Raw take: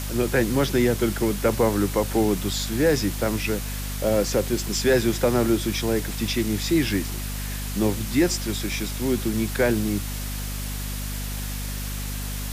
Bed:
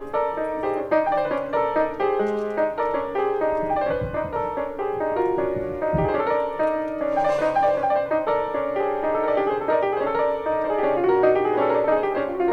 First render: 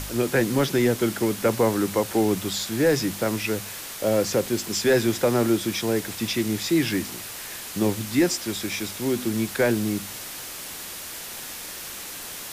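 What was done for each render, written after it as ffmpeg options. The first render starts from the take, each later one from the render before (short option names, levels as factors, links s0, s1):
-af "bandreject=f=50:t=h:w=4,bandreject=f=100:t=h:w=4,bandreject=f=150:t=h:w=4,bandreject=f=200:t=h:w=4,bandreject=f=250:t=h:w=4"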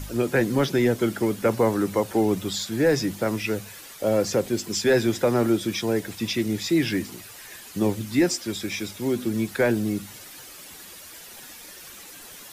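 -af "afftdn=nr=10:nf=-37"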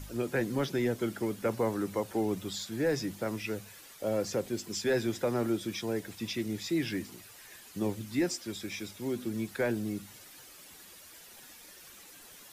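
-af "volume=0.355"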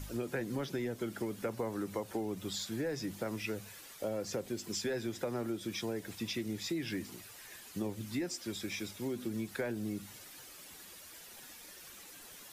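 -af "acompressor=threshold=0.0224:ratio=6"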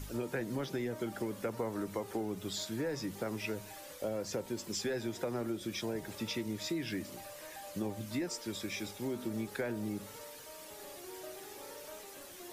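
-filter_complex "[1:a]volume=0.0316[s0];[0:a][s0]amix=inputs=2:normalize=0"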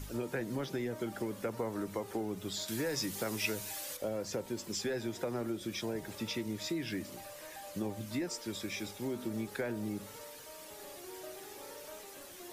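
-filter_complex "[0:a]asettb=1/sr,asplit=3[s0][s1][s2];[s0]atrim=end=2.684[s3];[s1]atrim=start=2.68:end=3.97,asetpts=PTS-STARTPTS,afade=t=in:d=0.004:c=qsin,afade=t=out:st=1.286:d=0.004:c=qsin,highshelf=f=2500:g=11.5[s4];[s2]atrim=start=3.966[s5];[s3][s4]acrossfade=d=0.004:c1=hsin:c2=qsin[s6];[s6][s5]acrossfade=d=0.004:c1=qsin:c2=hsin"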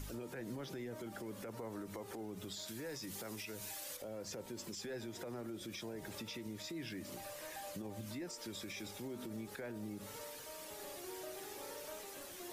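-af "acompressor=threshold=0.0126:ratio=6,alimiter=level_in=4.22:limit=0.0631:level=0:latency=1:release=70,volume=0.237"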